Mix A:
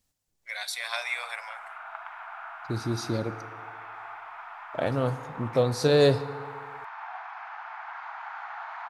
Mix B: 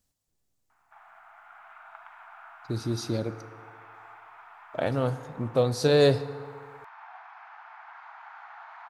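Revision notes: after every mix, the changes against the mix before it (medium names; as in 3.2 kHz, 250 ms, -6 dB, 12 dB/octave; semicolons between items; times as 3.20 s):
first voice: muted; background -7.5 dB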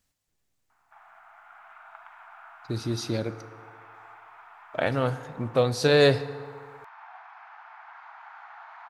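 speech: add peaking EQ 2 kHz +7.5 dB 1.8 oct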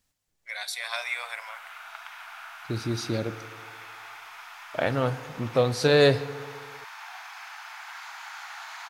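first voice: unmuted; background: remove low-pass 1.1 kHz 12 dB/octave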